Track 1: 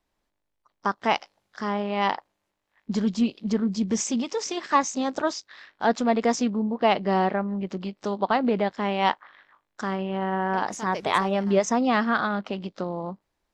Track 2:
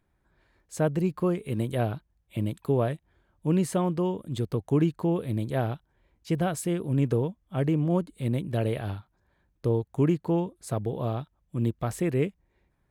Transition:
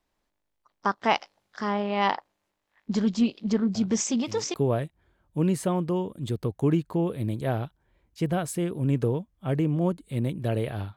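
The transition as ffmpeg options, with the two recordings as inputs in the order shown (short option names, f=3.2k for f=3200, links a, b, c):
-filter_complex "[1:a]asplit=2[a][b];[0:a]apad=whole_dur=10.96,atrim=end=10.96,atrim=end=4.542[c];[b]atrim=start=2.628:end=9.05[d];[a]atrim=start=1.84:end=2.63,asetpts=PTS-STARTPTS,volume=-12.5dB,afade=t=in:d=0.004:c=hsin,afade=t=out:st=0.786:d=0.004:c=hsin,adelay=3750[e];[c][d]acrossfade=d=0.004:c1=hsin:c2=hsin[f];[f][e]amix=inputs=2:normalize=0"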